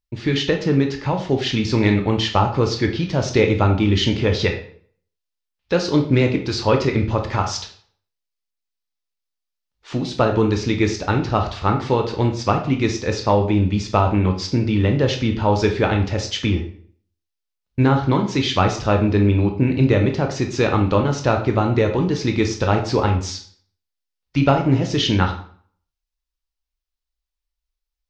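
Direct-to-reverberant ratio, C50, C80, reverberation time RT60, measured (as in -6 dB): 4.0 dB, 8.5 dB, 13.0 dB, 0.55 s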